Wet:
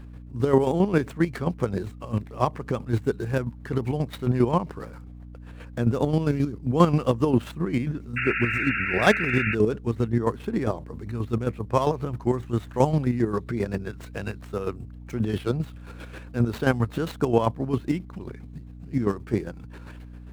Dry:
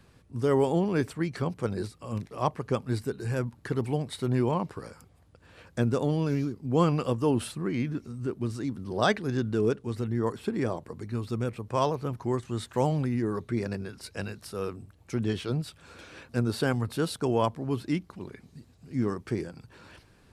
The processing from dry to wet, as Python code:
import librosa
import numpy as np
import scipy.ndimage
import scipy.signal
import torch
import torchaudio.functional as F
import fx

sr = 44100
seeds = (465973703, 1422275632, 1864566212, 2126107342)

y = scipy.signal.medfilt(x, 9)
y = fx.chopper(y, sr, hz=7.5, depth_pct=60, duty_pct=35)
y = fx.add_hum(y, sr, base_hz=60, snr_db=16)
y = fx.spec_paint(y, sr, seeds[0], shape='noise', start_s=8.16, length_s=1.39, low_hz=1300.0, high_hz=2800.0, level_db=-35.0)
y = F.gain(torch.from_numpy(y), 7.5).numpy()